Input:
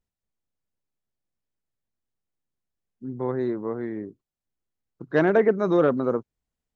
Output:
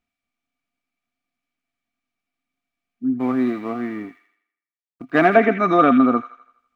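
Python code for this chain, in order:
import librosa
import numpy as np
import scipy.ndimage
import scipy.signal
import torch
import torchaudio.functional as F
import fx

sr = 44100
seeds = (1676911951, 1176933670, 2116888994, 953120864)

p1 = fx.law_mismatch(x, sr, coded='A', at=(3.18, 5.26), fade=0.02)
p2 = fx.peak_eq(p1, sr, hz=2400.0, db=13.0, octaves=2.1)
p3 = fx.small_body(p2, sr, hz=(260.0, 700.0, 1200.0, 2300.0), ring_ms=65, db=18)
p4 = p3 + fx.echo_wet_highpass(p3, sr, ms=82, feedback_pct=47, hz=2000.0, wet_db=-4.0, dry=0)
y = p4 * librosa.db_to_amplitude(-4.0)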